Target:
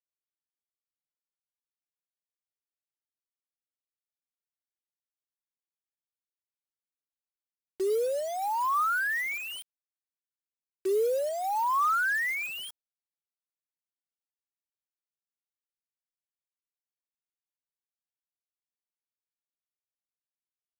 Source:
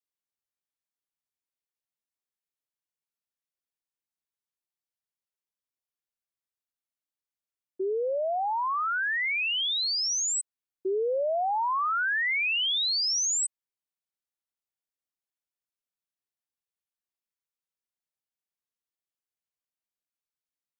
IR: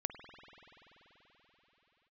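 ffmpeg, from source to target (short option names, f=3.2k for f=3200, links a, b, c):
-af "highpass=f=300:w=0.5412,highpass=f=300:w=1.3066,equalizer=f=430:t=q:w=4:g=3,equalizer=f=680:t=q:w=4:g=-7,equalizer=f=1.2k:t=q:w=4:g=3,lowpass=f=2k:w=0.5412,lowpass=f=2k:w=1.3066,acrusher=bits=6:mix=0:aa=0.000001"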